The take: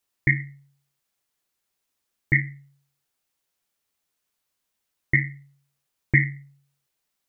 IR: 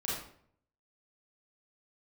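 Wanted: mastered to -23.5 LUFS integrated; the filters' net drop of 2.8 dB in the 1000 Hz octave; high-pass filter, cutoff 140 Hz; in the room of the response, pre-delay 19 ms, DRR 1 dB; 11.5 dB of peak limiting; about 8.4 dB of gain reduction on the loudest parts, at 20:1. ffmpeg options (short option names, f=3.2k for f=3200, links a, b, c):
-filter_complex "[0:a]highpass=140,equalizer=f=1k:t=o:g=-4,acompressor=threshold=-23dB:ratio=20,alimiter=limit=-22dB:level=0:latency=1,asplit=2[a][b];[1:a]atrim=start_sample=2205,adelay=19[c];[b][c]afir=irnorm=-1:irlink=0,volume=-5.5dB[d];[a][d]amix=inputs=2:normalize=0,volume=14dB"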